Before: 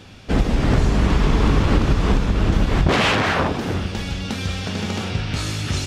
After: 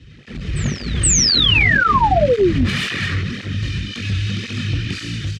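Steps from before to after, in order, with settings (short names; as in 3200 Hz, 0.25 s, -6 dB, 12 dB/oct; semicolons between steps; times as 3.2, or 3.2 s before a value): minimum comb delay 1.8 ms; Chebyshev band-stop 250–1800 Hz, order 2; high shelf 4300 Hz -5.5 dB; speed mistake 44.1 kHz file played as 48 kHz; HPF 47 Hz 12 dB/oct; air absorption 83 m; doubler 21 ms -6 dB; soft clip -21 dBFS, distortion -9 dB; painted sound fall, 1.03–2.7, 210–8500 Hz -20 dBFS; AGC gain up to 11 dB; on a send: reverse echo 0.471 s -22 dB; on the sum: tape flanging out of phase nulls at 1.9 Hz, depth 5.1 ms; gain -1.5 dB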